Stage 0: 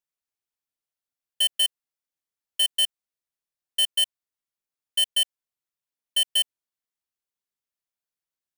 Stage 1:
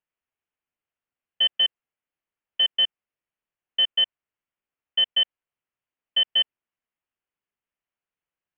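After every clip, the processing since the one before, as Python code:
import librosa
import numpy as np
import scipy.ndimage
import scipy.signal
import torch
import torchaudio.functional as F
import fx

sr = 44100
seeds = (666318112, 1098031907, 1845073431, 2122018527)

y = scipy.signal.sosfilt(scipy.signal.butter(12, 3100.0, 'lowpass', fs=sr, output='sos'), x)
y = y * 10.0 ** (4.5 / 20.0)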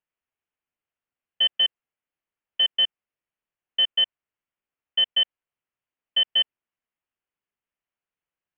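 y = x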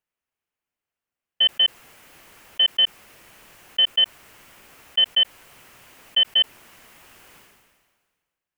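y = fx.sustainer(x, sr, db_per_s=36.0)
y = y * 10.0 ** (2.5 / 20.0)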